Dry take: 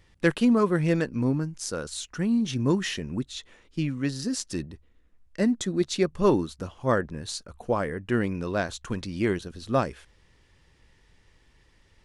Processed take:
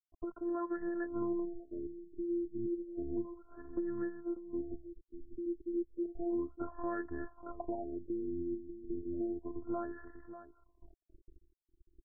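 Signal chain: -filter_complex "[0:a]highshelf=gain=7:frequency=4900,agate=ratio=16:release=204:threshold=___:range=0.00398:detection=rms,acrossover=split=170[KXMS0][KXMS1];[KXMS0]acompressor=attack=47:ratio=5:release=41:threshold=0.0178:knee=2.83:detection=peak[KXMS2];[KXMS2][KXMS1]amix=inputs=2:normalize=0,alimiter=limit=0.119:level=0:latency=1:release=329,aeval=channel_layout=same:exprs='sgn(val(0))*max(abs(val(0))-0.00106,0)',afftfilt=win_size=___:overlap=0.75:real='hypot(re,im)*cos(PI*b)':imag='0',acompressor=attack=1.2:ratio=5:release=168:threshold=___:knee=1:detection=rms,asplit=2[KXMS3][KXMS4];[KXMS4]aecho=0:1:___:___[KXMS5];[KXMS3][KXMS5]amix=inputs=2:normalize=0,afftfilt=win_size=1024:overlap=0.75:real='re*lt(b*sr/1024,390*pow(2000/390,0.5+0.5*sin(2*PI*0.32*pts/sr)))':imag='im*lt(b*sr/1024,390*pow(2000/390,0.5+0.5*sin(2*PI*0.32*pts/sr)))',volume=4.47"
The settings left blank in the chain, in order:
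0.00178, 512, 0.00501, 592, 0.266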